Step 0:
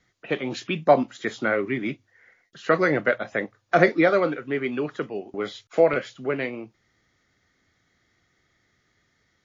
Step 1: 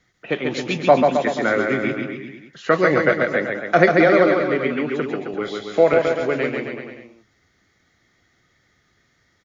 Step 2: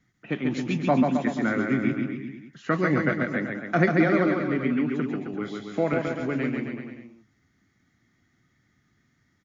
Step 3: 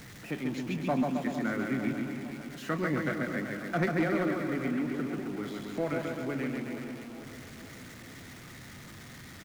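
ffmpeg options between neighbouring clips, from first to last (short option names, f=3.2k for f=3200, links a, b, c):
-af "aecho=1:1:140|266|379.4|481.5|573.3:0.631|0.398|0.251|0.158|0.1,volume=3dB"
-af "equalizer=f=125:t=o:w=1:g=6,equalizer=f=250:t=o:w=1:g=9,equalizer=f=500:t=o:w=1:g=-8,equalizer=f=4k:t=o:w=1:g=-5,volume=-6.5dB"
-filter_complex "[0:a]aeval=exprs='val(0)+0.5*0.02*sgn(val(0))':c=same,asplit=2[a][b];[b]aecho=0:1:454|908|1362|1816|2270|2724:0.224|0.132|0.0779|0.046|0.0271|0.016[c];[a][c]amix=inputs=2:normalize=0,asoftclip=type=hard:threshold=-13.5dB,volume=-8dB"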